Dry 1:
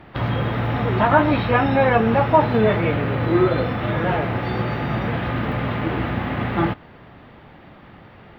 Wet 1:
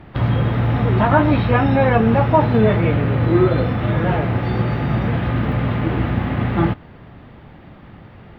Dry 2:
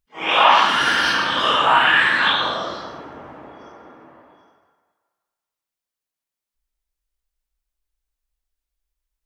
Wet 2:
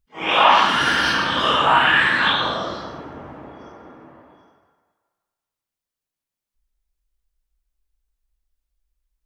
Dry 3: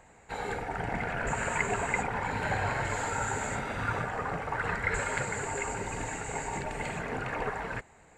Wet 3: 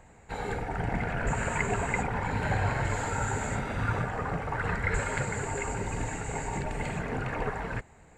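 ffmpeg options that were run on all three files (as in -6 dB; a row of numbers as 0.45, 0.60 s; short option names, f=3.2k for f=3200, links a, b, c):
-af "lowshelf=f=260:g=8.5,volume=-1dB"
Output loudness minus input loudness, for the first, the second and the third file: +2.5, -0.5, +1.0 LU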